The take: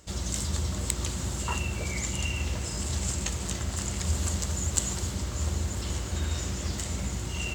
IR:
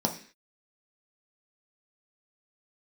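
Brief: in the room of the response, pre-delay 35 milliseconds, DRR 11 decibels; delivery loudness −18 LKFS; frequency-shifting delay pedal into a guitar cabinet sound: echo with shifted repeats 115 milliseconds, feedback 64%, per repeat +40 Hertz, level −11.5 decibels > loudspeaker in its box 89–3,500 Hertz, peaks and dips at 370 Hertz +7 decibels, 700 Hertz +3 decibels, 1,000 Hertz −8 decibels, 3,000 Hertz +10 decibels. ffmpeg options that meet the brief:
-filter_complex "[0:a]asplit=2[link_01][link_02];[1:a]atrim=start_sample=2205,adelay=35[link_03];[link_02][link_03]afir=irnorm=-1:irlink=0,volume=-19.5dB[link_04];[link_01][link_04]amix=inputs=2:normalize=0,asplit=9[link_05][link_06][link_07][link_08][link_09][link_10][link_11][link_12][link_13];[link_06]adelay=115,afreqshift=40,volume=-11.5dB[link_14];[link_07]adelay=230,afreqshift=80,volume=-15.4dB[link_15];[link_08]adelay=345,afreqshift=120,volume=-19.3dB[link_16];[link_09]adelay=460,afreqshift=160,volume=-23.1dB[link_17];[link_10]adelay=575,afreqshift=200,volume=-27dB[link_18];[link_11]adelay=690,afreqshift=240,volume=-30.9dB[link_19];[link_12]adelay=805,afreqshift=280,volume=-34.8dB[link_20];[link_13]adelay=920,afreqshift=320,volume=-38.6dB[link_21];[link_05][link_14][link_15][link_16][link_17][link_18][link_19][link_20][link_21]amix=inputs=9:normalize=0,highpass=89,equalizer=frequency=370:width_type=q:width=4:gain=7,equalizer=frequency=700:width_type=q:width=4:gain=3,equalizer=frequency=1000:width_type=q:width=4:gain=-8,equalizer=frequency=3000:width_type=q:width=4:gain=10,lowpass=frequency=3500:width=0.5412,lowpass=frequency=3500:width=1.3066,volume=14dB"

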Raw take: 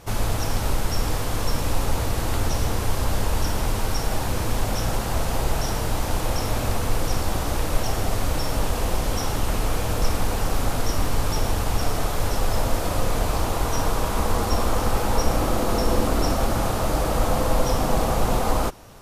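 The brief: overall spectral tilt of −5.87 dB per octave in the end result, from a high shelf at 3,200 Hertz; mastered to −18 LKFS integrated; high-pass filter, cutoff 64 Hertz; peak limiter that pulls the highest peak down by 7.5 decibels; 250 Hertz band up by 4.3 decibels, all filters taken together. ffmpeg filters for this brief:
ffmpeg -i in.wav -af "highpass=64,equalizer=frequency=250:width_type=o:gain=5.5,highshelf=frequency=3200:gain=-7.5,volume=9dB,alimiter=limit=-8dB:level=0:latency=1" out.wav

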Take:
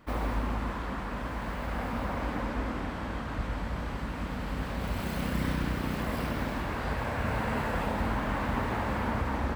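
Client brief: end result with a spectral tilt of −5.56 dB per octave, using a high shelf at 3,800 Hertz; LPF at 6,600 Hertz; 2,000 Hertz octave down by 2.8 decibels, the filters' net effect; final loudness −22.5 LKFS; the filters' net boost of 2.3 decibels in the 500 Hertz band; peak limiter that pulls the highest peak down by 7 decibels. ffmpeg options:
ffmpeg -i in.wav -af "lowpass=6600,equalizer=frequency=500:width_type=o:gain=3,equalizer=frequency=2000:width_type=o:gain=-5,highshelf=frequency=3800:gain=5,volume=11.5dB,alimiter=limit=-11.5dB:level=0:latency=1" out.wav

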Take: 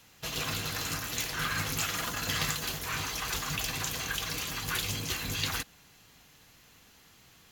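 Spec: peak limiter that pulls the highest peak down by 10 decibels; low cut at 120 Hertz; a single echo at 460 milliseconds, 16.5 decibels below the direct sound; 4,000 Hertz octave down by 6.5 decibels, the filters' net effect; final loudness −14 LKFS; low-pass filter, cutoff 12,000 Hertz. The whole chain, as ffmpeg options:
ffmpeg -i in.wav -af "highpass=120,lowpass=12000,equalizer=frequency=4000:width_type=o:gain=-8.5,alimiter=level_in=4dB:limit=-24dB:level=0:latency=1,volume=-4dB,aecho=1:1:460:0.15,volume=23.5dB" out.wav

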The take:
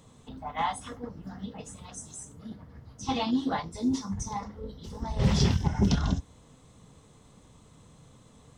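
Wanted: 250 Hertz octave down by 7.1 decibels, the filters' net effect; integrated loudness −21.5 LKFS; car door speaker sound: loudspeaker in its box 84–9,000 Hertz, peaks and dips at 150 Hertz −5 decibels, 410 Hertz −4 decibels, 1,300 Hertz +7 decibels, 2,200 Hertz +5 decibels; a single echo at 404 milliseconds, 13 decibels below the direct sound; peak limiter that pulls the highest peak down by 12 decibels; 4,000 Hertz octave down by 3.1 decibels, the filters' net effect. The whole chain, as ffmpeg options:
ffmpeg -i in.wav -af "equalizer=frequency=250:width_type=o:gain=-7.5,equalizer=frequency=4000:width_type=o:gain=-4.5,alimiter=level_in=2dB:limit=-24dB:level=0:latency=1,volume=-2dB,highpass=84,equalizer=frequency=150:width_type=q:width=4:gain=-5,equalizer=frequency=410:width_type=q:width=4:gain=-4,equalizer=frequency=1300:width_type=q:width=4:gain=7,equalizer=frequency=2200:width_type=q:width=4:gain=5,lowpass=frequency=9000:width=0.5412,lowpass=frequency=9000:width=1.3066,aecho=1:1:404:0.224,volume=17.5dB" out.wav

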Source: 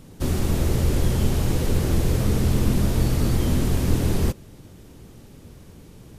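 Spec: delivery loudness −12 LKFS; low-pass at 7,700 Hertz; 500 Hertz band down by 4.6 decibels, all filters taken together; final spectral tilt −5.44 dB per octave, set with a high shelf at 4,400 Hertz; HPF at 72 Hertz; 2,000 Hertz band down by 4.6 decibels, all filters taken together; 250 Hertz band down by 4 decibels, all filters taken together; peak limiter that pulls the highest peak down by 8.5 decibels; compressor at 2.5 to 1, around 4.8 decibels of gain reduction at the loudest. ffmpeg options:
ffmpeg -i in.wav -af "highpass=72,lowpass=7700,equalizer=frequency=250:width_type=o:gain=-4.5,equalizer=frequency=500:width_type=o:gain=-4,equalizer=frequency=2000:width_type=o:gain=-7,highshelf=frequency=4400:gain=6,acompressor=threshold=-27dB:ratio=2.5,volume=22.5dB,alimiter=limit=-3dB:level=0:latency=1" out.wav

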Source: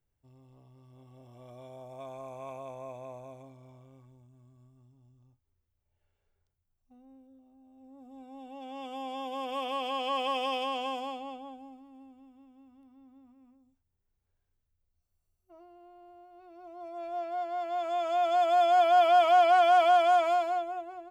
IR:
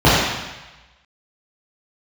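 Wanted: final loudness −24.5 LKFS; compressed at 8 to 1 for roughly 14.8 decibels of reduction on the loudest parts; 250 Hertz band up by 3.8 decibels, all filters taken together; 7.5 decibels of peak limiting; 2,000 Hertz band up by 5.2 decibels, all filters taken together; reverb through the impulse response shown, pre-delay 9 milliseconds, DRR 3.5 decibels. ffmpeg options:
-filter_complex "[0:a]equalizer=frequency=250:width_type=o:gain=4.5,equalizer=frequency=2000:width_type=o:gain=8,acompressor=threshold=-33dB:ratio=8,alimiter=level_in=9.5dB:limit=-24dB:level=0:latency=1,volume=-9.5dB,asplit=2[link_01][link_02];[1:a]atrim=start_sample=2205,adelay=9[link_03];[link_02][link_03]afir=irnorm=-1:irlink=0,volume=-32.5dB[link_04];[link_01][link_04]amix=inputs=2:normalize=0,volume=15.5dB"

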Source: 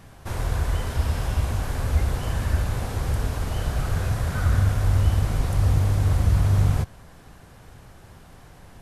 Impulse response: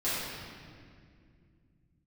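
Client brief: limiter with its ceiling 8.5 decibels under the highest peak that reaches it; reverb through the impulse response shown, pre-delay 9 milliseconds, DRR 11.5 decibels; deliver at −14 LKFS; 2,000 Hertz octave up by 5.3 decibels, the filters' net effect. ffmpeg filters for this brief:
-filter_complex "[0:a]equalizer=frequency=2000:width_type=o:gain=7,alimiter=limit=-16.5dB:level=0:latency=1,asplit=2[link_01][link_02];[1:a]atrim=start_sample=2205,adelay=9[link_03];[link_02][link_03]afir=irnorm=-1:irlink=0,volume=-21dB[link_04];[link_01][link_04]amix=inputs=2:normalize=0,volume=12.5dB"

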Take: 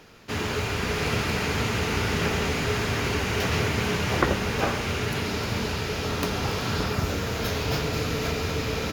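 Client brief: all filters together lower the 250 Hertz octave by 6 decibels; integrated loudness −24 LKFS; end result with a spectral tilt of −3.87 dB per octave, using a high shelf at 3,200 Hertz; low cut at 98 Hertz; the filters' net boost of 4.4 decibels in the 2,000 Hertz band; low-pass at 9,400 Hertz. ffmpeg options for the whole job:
ffmpeg -i in.wav -af "highpass=98,lowpass=9400,equalizer=frequency=250:width_type=o:gain=-8.5,equalizer=frequency=2000:width_type=o:gain=7,highshelf=frequency=3200:gain=-4,volume=2dB" out.wav

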